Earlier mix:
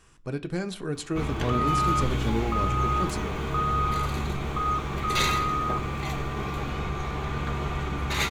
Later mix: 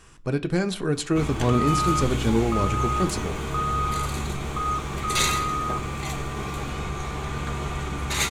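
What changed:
speech +6.5 dB
background: add parametric band 8,700 Hz +12 dB 1.1 octaves

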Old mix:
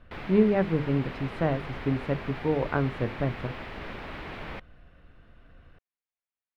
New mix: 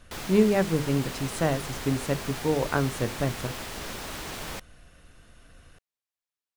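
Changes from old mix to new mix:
background: add parametric band 2,200 Hz −4.5 dB 0.73 octaves
master: remove high-frequency loss of the air 400 metres

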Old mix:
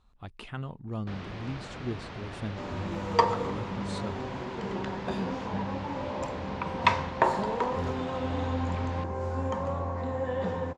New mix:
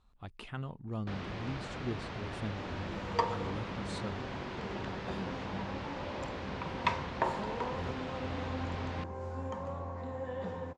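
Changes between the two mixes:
speech −3.0 dB
second sound −8.0 dB

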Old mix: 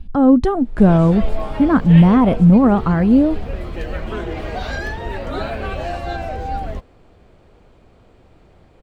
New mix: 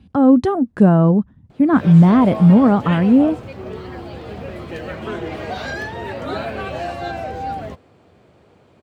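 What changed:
background: entry +0.95 s
master: add high-pass filter 89 Hz 24 dB per octave

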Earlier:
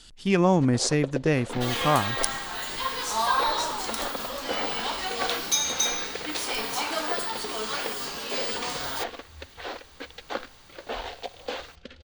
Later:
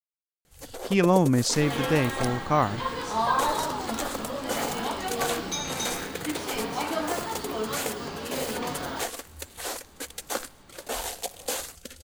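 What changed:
speech: entry +0.65 s
first sound: remove low-pass filter 4,000 Hz 24 dB per octave
second sound: add spectral tilt −3.5 dB per octave

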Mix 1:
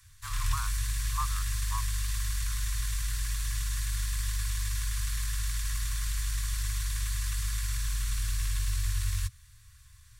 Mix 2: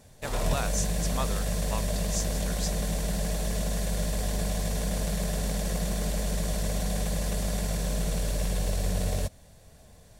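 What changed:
speech: remove low-pass with resonance 940 Hz, resonance Q 3.9
master: remove Chebyshev band-stop filter 120–1,100 Hz, order 5

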